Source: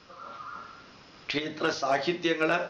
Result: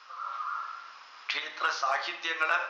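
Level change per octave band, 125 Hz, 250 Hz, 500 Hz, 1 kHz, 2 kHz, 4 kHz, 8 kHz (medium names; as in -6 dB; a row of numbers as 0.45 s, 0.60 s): under -35 dB, -22.0 dB, -11.0 dB, +2.0 dB, +1.5 dB, -1.0 dB, no reading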